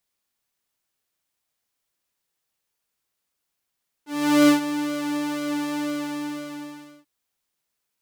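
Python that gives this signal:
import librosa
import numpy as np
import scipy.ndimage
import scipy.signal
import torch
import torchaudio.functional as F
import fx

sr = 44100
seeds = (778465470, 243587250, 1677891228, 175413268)

y = fx.sub_patch_pwm(sr, seeds[0], note=62, wave2='saw', interval_st=0, detune_cents=16, level2_db=-9.0, sub_db=-18.0, noise_db=-30.0, kind='highpass', cutoff_hz=110.0, q=1.0, env_oct=2.0, env_decay_s=0.1, env_sustain_pct=40, attack_ms=420.0, decay_s=0.12, sustain_db=-12.5, release_s=1.28, note_s=1.71, lfo_hz=2.0, width_pct=46, width_swing_pct=14)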